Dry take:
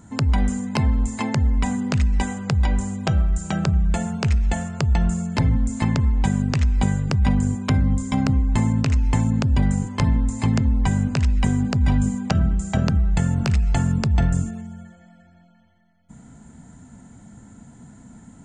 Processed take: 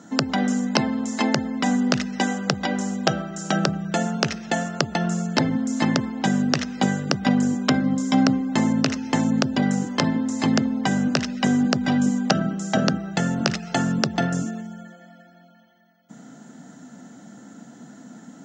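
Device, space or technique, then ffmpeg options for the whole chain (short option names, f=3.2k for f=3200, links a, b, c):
old television with a line whistle: -af "highpass=f=210:w=0.5412,highpass=f=210:w=1.3066,equalizer=f=220:t=q:w=4:g=-4,equalizer=f=410:t=q:w=4:g=-4,equalizer=f=970:t=q:w=4:g=-9,equalizer=f=2.3k:t=q:w=4:g=-8,equalizer=f=5.7k:t=q:w=4:g=8,lowpass=f=7.9k:w=0.5412,lowpass=f=7.9k:w=1.3066,aeval=exprs='val(0)+0.00141*sin(2*PI*15625*n/s)':c=same,lowpass=5.2k,volume=8dB"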